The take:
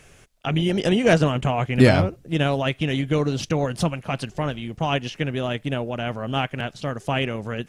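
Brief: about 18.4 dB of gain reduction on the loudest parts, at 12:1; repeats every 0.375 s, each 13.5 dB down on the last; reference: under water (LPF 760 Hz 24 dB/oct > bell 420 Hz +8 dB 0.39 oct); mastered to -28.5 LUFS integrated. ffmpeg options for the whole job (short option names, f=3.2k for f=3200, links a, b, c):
-af "acompressor=threshold=-27dB:ratio=12,lowpass=f=760:w=0.5412,lowpass=f=760:w=1.3066,equalizer=f=420:t=o:w=0.39:g=8,aecho=1:1:375|750:0.211|0.0444,volume=3.5dB"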